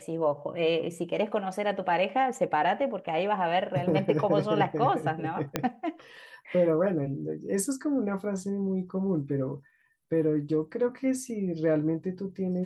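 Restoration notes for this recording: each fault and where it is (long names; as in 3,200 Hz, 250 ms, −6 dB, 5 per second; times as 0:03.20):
0:05.56: click −11 dBFS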